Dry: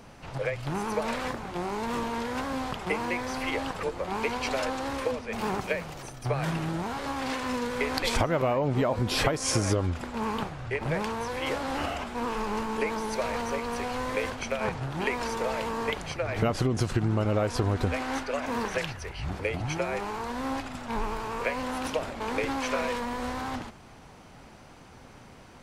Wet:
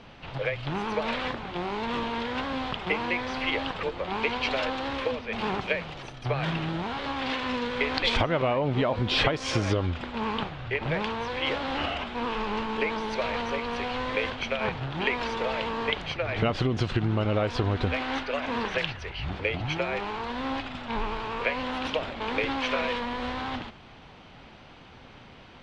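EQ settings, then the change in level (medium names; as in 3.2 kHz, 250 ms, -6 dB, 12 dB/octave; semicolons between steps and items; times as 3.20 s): resonant low-pass 3.4 kHz, resonance Q 2.3; 0.0 dB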